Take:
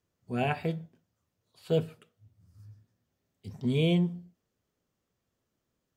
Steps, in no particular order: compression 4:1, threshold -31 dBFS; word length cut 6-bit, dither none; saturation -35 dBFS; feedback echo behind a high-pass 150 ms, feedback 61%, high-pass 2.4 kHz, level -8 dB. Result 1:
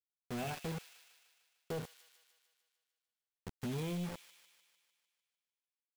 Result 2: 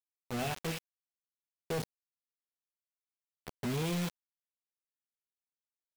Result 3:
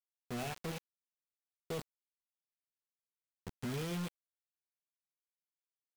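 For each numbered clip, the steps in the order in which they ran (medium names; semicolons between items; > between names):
word length cut > compression > saturation > feedback echo behind a high-pass; saturation > feedback echo behind a high-pass > word length cut > compression; compression > feedback echo behind a high-pass > word length cut > saturation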